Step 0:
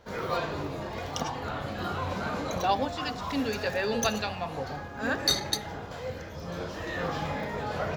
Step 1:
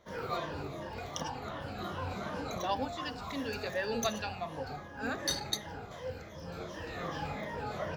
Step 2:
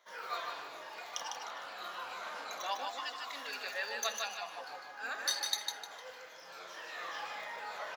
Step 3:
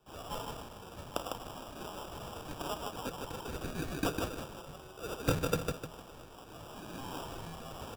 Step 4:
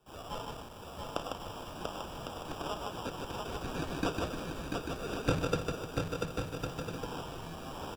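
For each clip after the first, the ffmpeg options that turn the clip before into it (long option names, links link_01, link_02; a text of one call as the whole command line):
ffmpeg -i in.wav -af "afftfilt=real='re*pow(10,9/40*sin(2*PI*(1.2*log(max(b,1)*sr/1024/100)/log(2)-(-2.7)*(pts-256)/sr)))':imag='im*pow(10,9/40*sin(2*PI*(1.2*log(max(b,1)*sr/1024/100)/log(2)-(-2.7)*(pts-256)/sr)))':win_size=1024:overlap=0.75,volume=-7dB" out.wav
ffmpeg -i in.wav -filter_complex "[0:a]highpass=980,asplit=2[link_01][link_02];[link_02]aecho=0:1:152|304|456|608:0.596|0.185|0.0572|0.0177[link_03];[link_01][link_03]amix=inputs=2:normalize=0" out.wav
ffmpeg -i in.wav -af "tiltshelf=frequency=1200:gain=-9.5,acrusher=samples=20:mix=1:aa=0.000001,afreqshift=-170,volume=-3dB" out.wav
ffmpeg -i in.wav -filter_complex "[0:a]asplit=2[link_01][link_02];[link_02]aecho=0:1:690|1104|1352|1501|1591:0.631|0.398|0.251|0.158|0.1[link_03];[link_01][link_03]amix=inputs=2:normalize=0,acrossover=split=6900[link_04][link_05];[link_05]acompressor=threshold=-55dB:ratio=4:attack=1:release=60[link_06];[link_04][link_06]amix=inputs=2:normalize=0" out.wav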